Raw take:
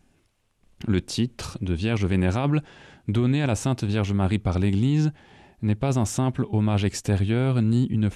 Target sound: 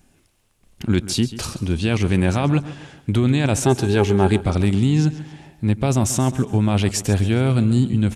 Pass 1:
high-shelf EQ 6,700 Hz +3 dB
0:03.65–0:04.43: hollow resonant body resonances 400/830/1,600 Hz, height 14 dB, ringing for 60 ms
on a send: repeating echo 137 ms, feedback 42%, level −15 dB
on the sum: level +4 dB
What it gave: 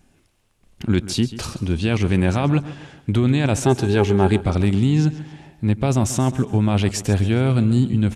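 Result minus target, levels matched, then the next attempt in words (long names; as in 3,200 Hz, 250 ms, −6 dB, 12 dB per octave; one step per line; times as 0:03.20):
8,000 Hz band −3.0 dB
high-shelf EQ 6,700 Hz +9 dB
0:03.65–0:04.43: hollow resonant body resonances 400/830/1,600 Hz, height 14 dB, ringing for 60 ms
on a send: repeating echo 137 ms, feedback 42%, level −15 dB
on the sum: level +4 dB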